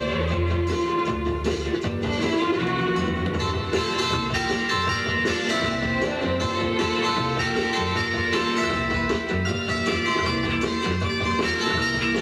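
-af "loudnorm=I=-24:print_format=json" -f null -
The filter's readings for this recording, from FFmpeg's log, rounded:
"input_i" : "-23.5",
"input_tp" : "-10.4",
"input_lra" : "0.9",
"input_thresh" : "-33.5",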